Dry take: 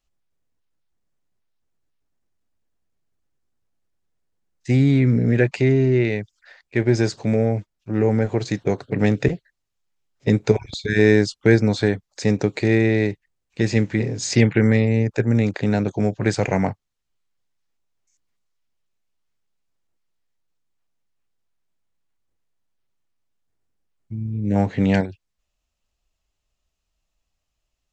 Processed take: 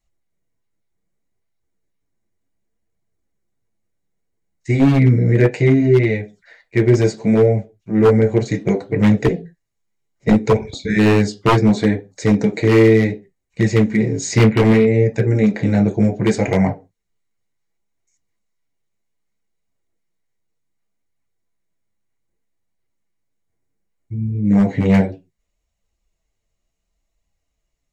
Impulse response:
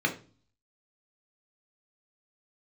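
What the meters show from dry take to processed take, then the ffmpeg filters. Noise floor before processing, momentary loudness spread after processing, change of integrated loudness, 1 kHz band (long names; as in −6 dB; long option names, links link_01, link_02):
−78 dBFS, 9 LU, +4.5 dB, +7.0 dB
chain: -filter_complex "[0:a]asplit=2[link_01][link_02];[1:a]atrim=start_sample=2205,afade=type=out:start_time=0.33:duration=0.01,atrim=end_sample=14994,asetrate=66150,aresample=44100[link_03];[link_02][link_03]afir=irnorm=-1:irlink=0,volume=-8.5dB[link_04];[link_01][link_04]amix=inputs=2:normalize=0,aeval=exprs='0.447*(abs(mod(val(0)/0.447+3,4)-2)-1)':channel_layout=same,flanger=delay=0.9:depth=8.7:regen=-37:speed=0.66:shape=triangular,volume=5dB"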